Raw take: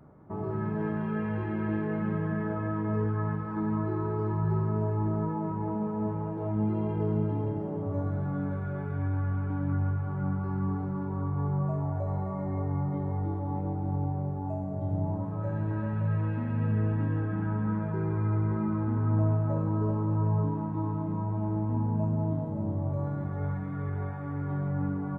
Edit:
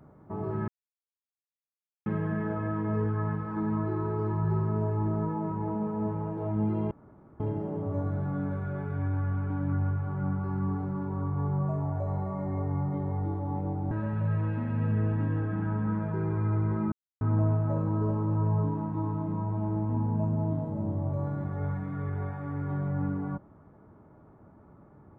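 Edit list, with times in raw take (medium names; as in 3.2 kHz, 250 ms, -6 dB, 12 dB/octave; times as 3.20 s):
0.68–2.06 s: mute
6.91–7.40 s: room tone
13.91–15.71 s: delete
18.72–19.01 s: mute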